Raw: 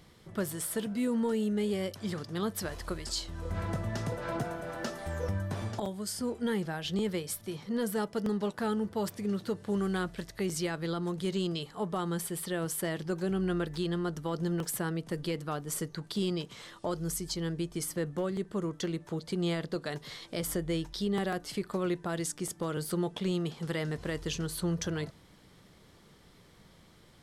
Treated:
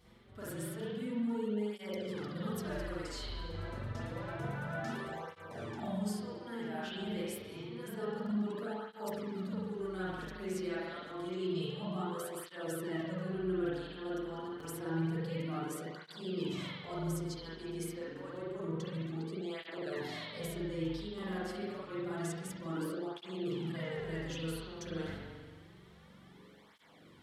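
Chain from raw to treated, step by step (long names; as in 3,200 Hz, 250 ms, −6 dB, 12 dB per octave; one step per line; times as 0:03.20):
noise gate −48 dBFS, range −8 dB
reversed playback
downward compressor 6 to 1, threshold −45 dBFS, peak gain reduction 16.5 dB
reversed playback
spring reverb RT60 1.5 s, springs 43 ms, chirp 30 ms, DRR −8.5 dB
through-zero flanger with one copy inverted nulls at 0.28 Hz, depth 7.2 ms
level +2.5 dB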